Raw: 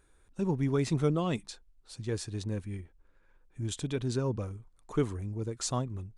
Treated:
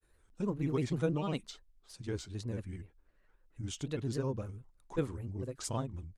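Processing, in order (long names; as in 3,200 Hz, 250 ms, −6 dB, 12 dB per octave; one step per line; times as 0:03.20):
granular cloud, spray 19 ms, pitch spread up and down by 3 semitones
level −3 dB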